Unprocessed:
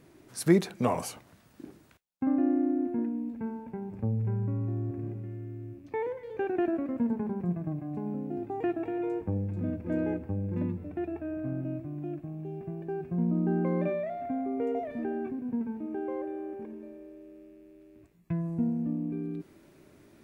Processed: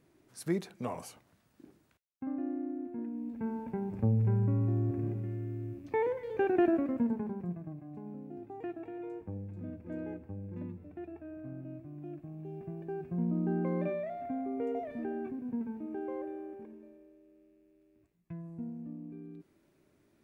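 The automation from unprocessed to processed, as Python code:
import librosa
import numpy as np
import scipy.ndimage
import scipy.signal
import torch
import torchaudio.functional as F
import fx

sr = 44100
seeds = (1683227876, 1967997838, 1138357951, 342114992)

y = fx.gain(x, sr, db=fx.line((2.91, -10.0), (3.61, 2.0), (6.73, 2.0), (7.74, -10.0), (11.67, -10.0), (12.61, -4.0), (16.27, -4.0), (17.21, -12.0)))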